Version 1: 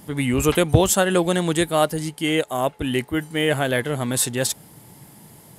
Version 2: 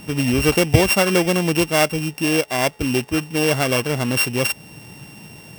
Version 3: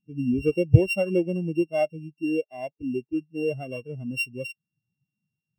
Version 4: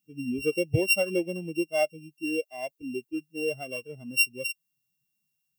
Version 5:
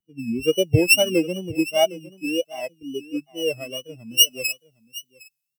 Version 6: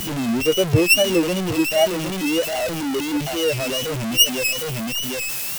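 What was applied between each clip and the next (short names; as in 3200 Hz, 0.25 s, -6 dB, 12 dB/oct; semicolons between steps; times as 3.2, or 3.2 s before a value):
sample sorter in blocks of 16 samples; in parallel at 0 dB: compressor, threshold -29 dBFS, peak gain reduction 19 dB
spectral expander 2.5:1
RIAA curve recording
wow and flutter 120 cents; echo 0.76 s -16 dB; three-band expander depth 40%; gain +5.5 dB
zero-crossing step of -19 dBFS; gain -1 dB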